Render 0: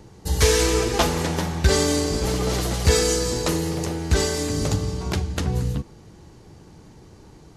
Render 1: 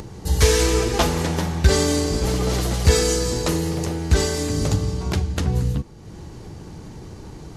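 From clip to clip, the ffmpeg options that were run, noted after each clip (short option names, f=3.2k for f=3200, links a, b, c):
-af "lowshelf=f=210:g=3.5,acompressor=mode=upward:threshold=-28dB:ratio=2.5"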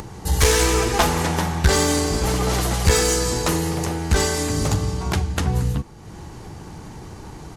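-af "firequalizer=gain_entry='entry(550,0);entry(780,6);entry(4300,1);entry(9100,5)':delay=0.05:min_phase=1,aeval=exprs='clip(val(0),-1,0.188)':c=same"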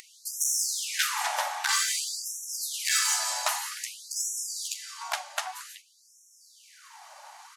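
-af "afftfilt=real='re*gte(b*sr/1024,540*pow(5500/540,0.5+0.5*sin(2*PI*0.52*pts/sr)))':imag='im*gte(b*sr/1024,540*pow(5500/540,0.5+0.5*sin(2*PI*0.52*pts/sr)))':win_size=1024:overlap=0.75,volume=-3dB"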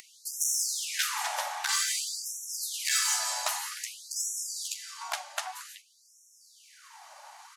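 -filter_complex "[0:a]acrossover=split=490|3000[a][b][c];[b]acompressor=threshold=-29dB:ratio=6[d];[a][d][c]amix=inputs=3:normalize=0,volume=-1.5dB"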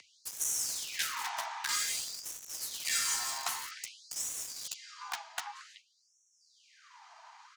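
-filter_complex "[0:a]afreqshift=78,acrossover=split=130|500|6600[a][b][c][d];[d]acrusher=bits=5:mix=0:aa=0.000001[e];[a][b][c][e]amix=inputs=4:normalize=0,volume=-4.5dB"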